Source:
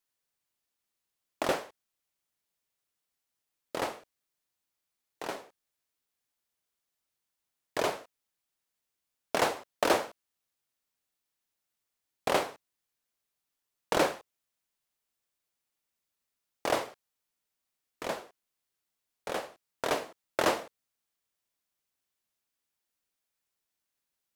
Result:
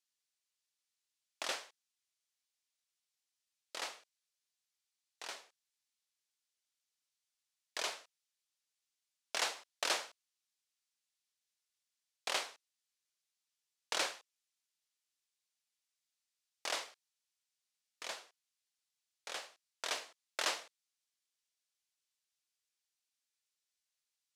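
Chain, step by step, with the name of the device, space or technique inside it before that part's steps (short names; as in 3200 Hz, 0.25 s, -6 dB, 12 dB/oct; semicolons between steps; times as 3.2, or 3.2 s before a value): piezo pickup straight into a mixer (LPF 5600 Hz 12 dB/oct; differentiator); gain +6 dB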